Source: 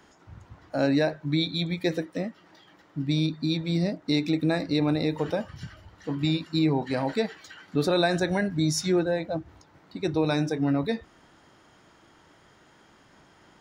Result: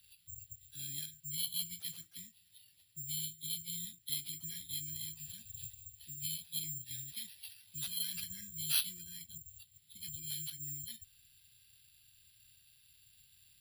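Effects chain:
hearing-aid frequency compression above 2,200 Hz 1.5 to 1
elliptic band-stop filter 110–4,300 Hz, stop band 70 dB
in parallel at −1 dB: downward compressor, threshold −51 dBFS, peak gain reduction 20.5 dB
on the sum: three-way crossover with the lows and the highs turned down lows −15 dB, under 390 Hz, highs −18 dB, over 3,600 Hz
bad sample-rate conversion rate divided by 6×, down none, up zero stuff
level +1.5 dB

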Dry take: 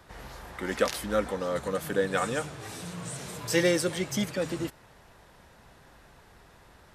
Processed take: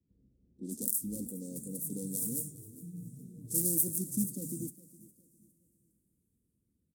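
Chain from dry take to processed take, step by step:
phase distortion by the signal itself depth 0.55 ms
high-pass filter 53 Hz
parametric band 470 Hz +4.5 dB 0.25 octaves
in parallel at −5 dB: wave folding −21.5 dBFS
on the sum: noise reduction from a noise print of the clip's start 14 dB
low-pass that shuts in the quiet parts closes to 580 Hz, open at −23.5 dBFS
elliptic band-stop filter 260–8,900 Hz, stop band 80 dB
spectral tilt +2.5 dB per octave
repeating echo 409 ms, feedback 35%, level −20 dB
coupled-rooms reverb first 0.43 s, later 4.4 s, from −19 dB, DRR 17 dB

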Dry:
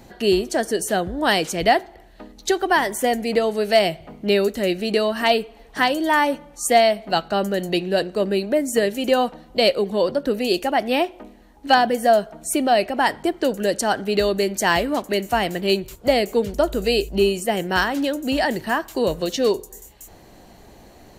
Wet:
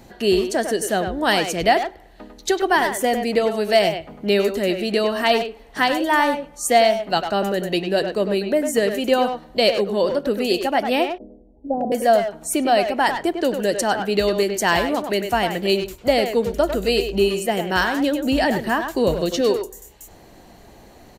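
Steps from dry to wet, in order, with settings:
0:11.08–0:11.92: Butterworth low-pass 620 Hz 36 dB per octave
0:18.00–0:19.41: low-shelf EQ 240 Hz +6 dB
far-end echo of a speakerphone 100 ms, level −6 dB

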